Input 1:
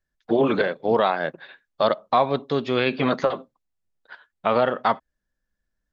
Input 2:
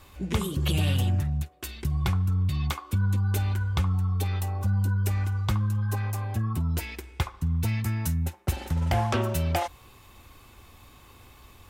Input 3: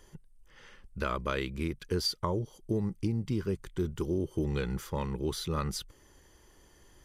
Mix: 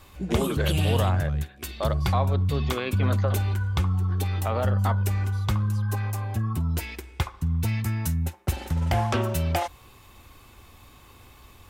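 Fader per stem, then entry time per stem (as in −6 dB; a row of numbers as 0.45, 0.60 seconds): −8.5, +1.0, −15.0 decibels; 0.00, 0.00, 0.00 seconds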